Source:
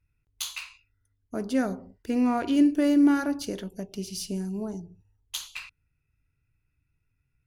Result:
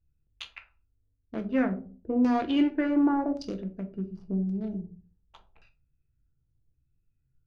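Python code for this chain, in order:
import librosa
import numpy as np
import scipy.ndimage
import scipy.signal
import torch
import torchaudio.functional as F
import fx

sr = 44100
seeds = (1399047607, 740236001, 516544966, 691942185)

y = fx.wiener(x, sr, points=41)
y = fx.filter_lfo_lowpass(y, sr, shape='saw_down', hz=0.89, low_hz=570.0, high_hz=5900.0, q=2.1)
y = fx.room_shoebox(y, sr, seeds[0], volume_m3=150.0, walls='furnished', distance_m=0.74)
y = y * 10.0 ** (-1.5 / 20.0)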